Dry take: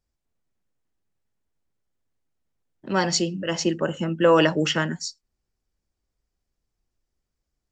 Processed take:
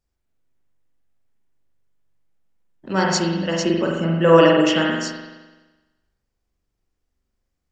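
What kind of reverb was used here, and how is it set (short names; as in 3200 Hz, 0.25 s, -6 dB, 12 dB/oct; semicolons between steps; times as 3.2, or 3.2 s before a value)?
spring tank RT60 1.2 s, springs 42 ms, chirp 50 ms, DRR -1.5 dB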